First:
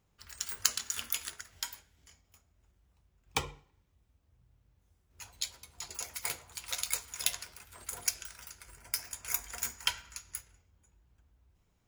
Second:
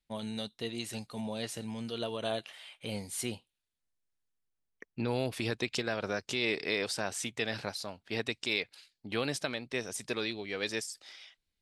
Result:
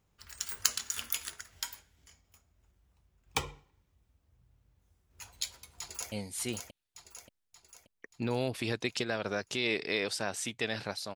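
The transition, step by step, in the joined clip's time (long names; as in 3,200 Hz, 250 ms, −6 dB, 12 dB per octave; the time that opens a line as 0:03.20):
first
0:05.79–0:06.12: delay throw 580 ms, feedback 50%, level −4 dB
0:06.12: continue with second from 0:02.90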